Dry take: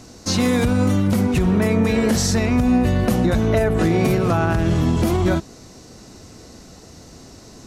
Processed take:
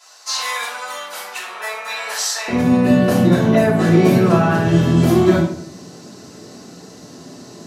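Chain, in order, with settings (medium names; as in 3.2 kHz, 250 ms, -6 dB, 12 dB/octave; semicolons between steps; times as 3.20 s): high-pass 850 Hz 24 dB/octave, from 2.48 s 150 Hz; simulated room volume 75 m³, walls mixed, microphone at 3 m; trim -8 dB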